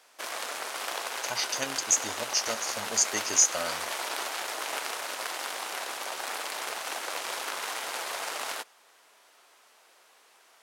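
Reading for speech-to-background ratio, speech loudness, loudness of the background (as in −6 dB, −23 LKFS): 6.5 dB, −27.0 LKFS, −33.5 LKFS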